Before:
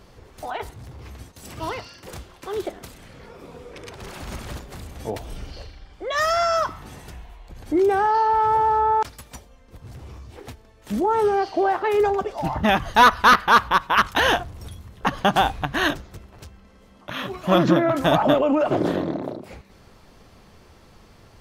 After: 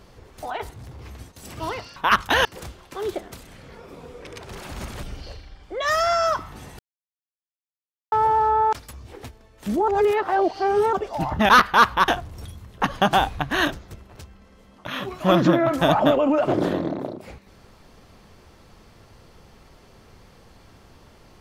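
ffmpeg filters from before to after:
-filter_complex "[0:a]asplit=11[s0][s1][s2][s3][s4][s5][s6][s7][s8][s9][s10];[s0]atrim=end=1.962[s11];[s1]atrim=start=13.818:end=14.312[s12];[s2]atrim=start=1.958:end=4.542[s13];[s3]atrim=start=5.328:end=7.09,asetpts=PTS-STARTPTS,afade=t=out:st=1.758:d=0.004:c=hsin[s14];[s4]atrim=start=7.09:end=8.42,asetpts=PTS-STARTPTS,volume=0[s15];[s5]atrim=start=8.42:end=9.232,asetpts=PTS-STARTPTS,afade=t=in:d=0.004:c=hsin[s16];[s6]atrim=start=10.168:end=11.122[s17];[s7]atrim=start=11.118:end=12.172,asetpts=PTS-STARTPTS,areverse[s18];[s8]atrim=start=12.168:end=12.732[s19];[s9]atrim=start=13.228:end=13.822[s20];[s10]atrim=start=14.308[s21];[s11][s12]acrossfade=d=0.004:c1=hsin:c2=hsin[s22];[s22][s13]acrossfade=d=0.004:c1=hsin:c2=hsin[s23];[s14][s15][s16]concat=n=3:v=0:a=1[s24];[s23][s24]acrossfade=d=0.004:c1=hsin:c2=hsin[s25];[s25][s17]acrossfade=d=0.004:c1=hsin:c2=hsin[s26];[s26][s18]acrossfade=d=0.004:c1=hsin:c2=hsin[s27];[s27][s19]acrossfade=d=0.004:c1=hsin:c2=hsin[s28];[s28][s20]acrossfade=d=0.004:c1=hsin:c2=hsin[s29];[s29][s21]acrossfade=d=0.004:c1=hsin:c2=hsin"

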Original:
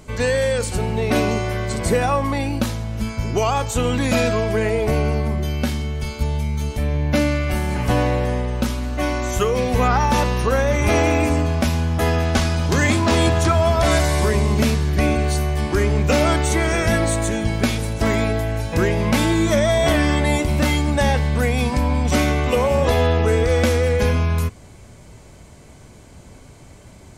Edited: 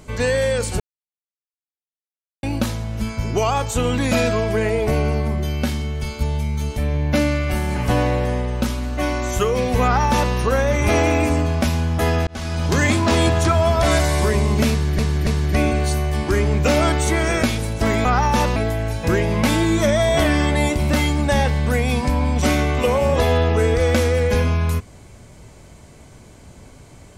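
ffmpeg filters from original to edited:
-filter_complex "[0:a]asplit=9[s0][s1][s2][s3][s4][s5][s6][s7][s8];[s0]atrim=end=0.8,asetpts=PTS-STARTPTS,afade=t=out:st=0.796:d=0.004:c=hsin[s9];[s1]atrim=start=0.8:end=2.43,asetpts=PTS-STARTPTS,volume=0[s10];[s2]atrim=start=2.43:end=12.27,asetpts=PTS-STARTPTS,afade=t=in:d=0.004:c=hsin,afade=t=out:st=9.836:d=0.004:c=hsin[s11];[s3]atrim=start=12.27:end=14.992,asetpts=PTS-STARTPTS,afade=t=in:d=0.39[s12];[s4]atrim=start=14.708:end=14.992[s13];[s5]atrim=start=14.708:end=16.872[s14];[s6]atrim=start=17.628:end=18.252[s15];[s7]atrim=start=9.828:end=10.342[s16];[s8]atrim=start=18.248[s17];[s9][s10][s11][s12]concat=n=4:v=0:a=1[s18];[s18][s13]acrossfade=d=0.004:c1=hsin:c2=hsin[s19];[s19][s14]acrossfade=d=0.004:c1=hsin:c2=hsin[s20];[s20][s15]acrossfade=d=0.004:c1=hsin:c2=hsin[s21];[s21][s16]acrossfade=d=0.004:c1=hsin:c2=hsin[s22];[s22][s17]acrossfade=d=0.004:c1=hsin:c2=hsin"

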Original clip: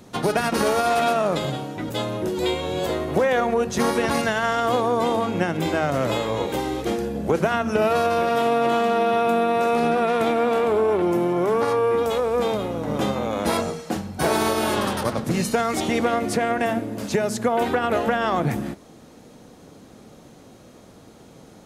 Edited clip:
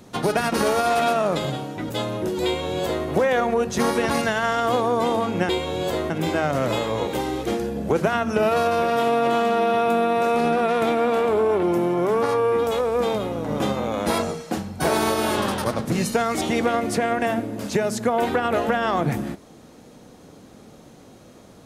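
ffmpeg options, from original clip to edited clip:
-filter_complex "[0:a]asplit=3[s0][s1][s2];[s0]atrim=end=5.492[s3];[s1]atrim=start=2.448:end=3.062[s4];[s2]atrim=start=5.488[s5];[s3][s4]acrossfade=d=0.004:c1=hsin:c2=hsin[s6];[s6][s5]acrossfade=d=0.004:c1=hsin:c2=hsin"

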